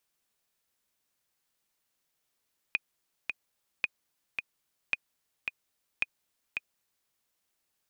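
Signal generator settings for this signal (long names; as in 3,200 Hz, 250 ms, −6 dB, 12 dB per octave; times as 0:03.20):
click track 110 BPM, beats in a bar 2, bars 4, 2,480 Hz, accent 5 dB −13.5 dBFS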